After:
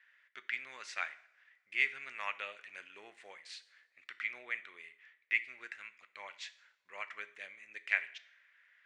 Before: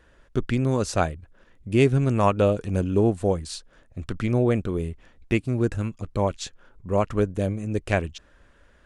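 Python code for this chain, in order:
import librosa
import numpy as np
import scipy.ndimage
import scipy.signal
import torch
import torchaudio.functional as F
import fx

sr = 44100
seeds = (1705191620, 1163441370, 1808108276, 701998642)

y = fx.ladder_bandpass(x, sr, hz=2200.0, resonance_pct=70)
y = fx.rev_double_slope(y, sr, seeds[0], early_s=0.6, late_s=3.3, knee_db=-28, drr_db=12.0)
y = y * 10.0 ** (4.0 / 20.0)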